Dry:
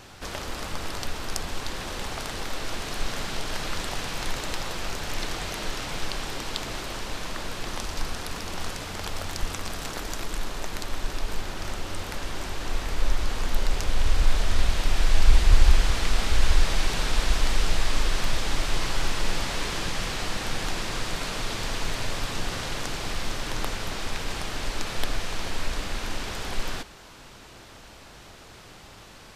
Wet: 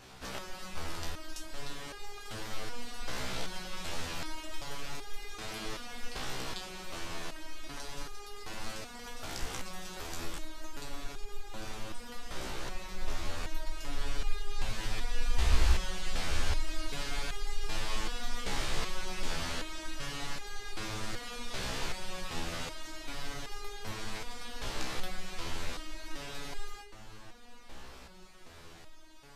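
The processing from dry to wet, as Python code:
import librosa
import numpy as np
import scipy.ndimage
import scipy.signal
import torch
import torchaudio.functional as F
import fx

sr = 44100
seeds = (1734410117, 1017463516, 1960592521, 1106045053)

y = fx.echo_filtered(x, sr, ms=1154, feedback_pct=59, hz=2200.0, wet_db=-14.5)
y = fx.resonator_held(y, sr, hz=2.6, low_hz=64.0, high_hz=410.0)
y = y * 10.0 ** (2.0 / 20.0)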